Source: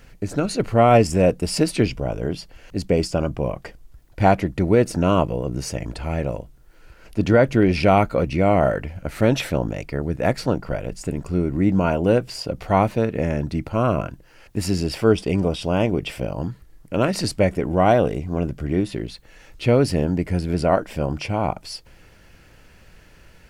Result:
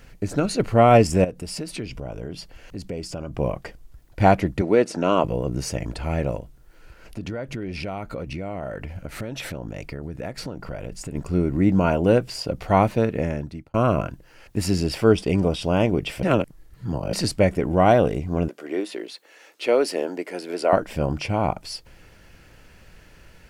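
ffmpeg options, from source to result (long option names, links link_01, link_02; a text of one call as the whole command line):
ffmpeg -i in.wav -filter_complex "[0:a]asettb=1/sr,asplit=3[link_01][link_02][link_03];[link_01]atrim=end=1.244[link_04];[link_02]atrim=start=1.24:end=3.35,asetpts=PTS-STARTPTS,afade=type=in:duration=0.004:curve=qsin,afade=type=out:start_time=2.106:duration=0.004:curve=qsin,acompressor=threshold=-31dB:ratio=3:attack=3.2:release=140:knee=1:detection=peak[link_05];[link_03]atrim=start=3.346[link_06];[link_04][link_05]acrossfade=duration=0.004:curve1=hsin:curve2=qsin[link_07];[link_07][link_06]acrossfade=duration=0.004:curve1=qsin:curve2=hsin,asettb=1/sr,asplit=3[link_08][link_09][link_10];[link_08]atrim=end=4.614[link_11];[link_09]atrim=start=4.61:end=5.24,asetpts=PTS-STARTPTS,afade=type=in:duration=0.004:curve=qsin,afade=type=out:start_time=0.626:duration=0.004:curve=qsin,highpass=260,lowpass=7500[link_12];[link_10]atrim=start=5.236[link_13];[link_11][link_12]acrossfade=duration=0.004:curve1=hsin:curve2=qsin[link_14];[link_14][link_13]acrossfade=duration=0.004:curve1=qsin:curve2=hsin,asplit=3[link_15][link_16][link_17];[link_15]afade=type=out:start_time=6.38:duration=0.02[link_18];[link_16]acompressor=threshold=-28dB:ratio=6:attack=3.2:release=140:knee=1:detection=peak,afade=type=in:start_time=6.38:duration=0.02,afade=type=out:start_time=11.14:duration=0.02[link_19];[link_17]afade=type=in:start_time=11.14:duration=0.02[link_20];[link_18][link_19][link_20]amix=inputs=3:normalize=0,asettb=1/sr,asplit=3[link_21][link_22][link_23];[link_21]atrim=end=18.484[link_24];[link_22]atrim=start=18.48:end=20.73,asetpts=PTS-STARTPTS,afade=type=in:duration=0.004:curve=qsin,afade=type=out:start_time=2.246:duration=0.004:curve=qsin,highpass=frequency=340:width=0.5412,highpass=frequency=340:width=1.3066[link_25];[link_23]atrim=start=20.726[link_26];[link_24][link_25]acrossfade=duration=0.004:curve1=hsin:curve2=qsin[link_27];[link_27][link_26]acrossfade=duration=0.004:curve1=qsin:curve2=hsin,asplit=4[link_28][link_29][link_30][link_31];[link_28]atrim=end=13.74,asetpts=PTS-STARTPTS,afade=type=out:start_time=13.1:duration=0.64[link_32];[link_29]atrim=start=13.74:end=16.232,asetpts=PTS-STARTPTS,afade=type=in:duration=0.004:curve=hsin[link_33];[link_30]atrim=start=16.228:end=17.132,asetpts=PTS-STARTPTS,areverse[link_34];[link_31]atrim=start=17.128[link_35];[link_32][link_33]concat=n=2:v=0:a=1[link_36];[link_36][link_34]acrossfade=duration=0.004:curve1=hsin:curve2=hsin[link_37];[link_37][link_35]acrossfade=duration=0.004:curve1=hsin:curve2=hsin" out.wav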